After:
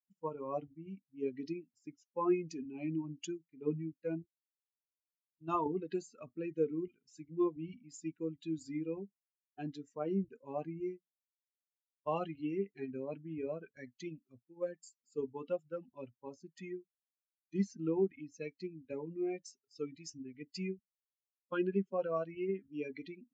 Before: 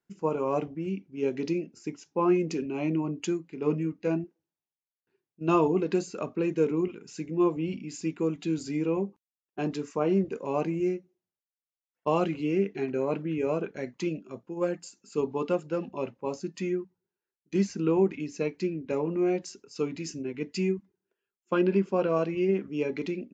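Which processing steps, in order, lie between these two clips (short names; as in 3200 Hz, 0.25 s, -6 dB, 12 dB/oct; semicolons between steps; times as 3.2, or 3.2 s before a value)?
per-bin expansion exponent 2; 4.22–5.66 fifteen-band EQ 160 Hz -7 dB, 400 Hz -9 dB, 1000 Hz +3 dB, 2500 Hz -10 dB, 6300 Hz +4 dB; gain -5 dB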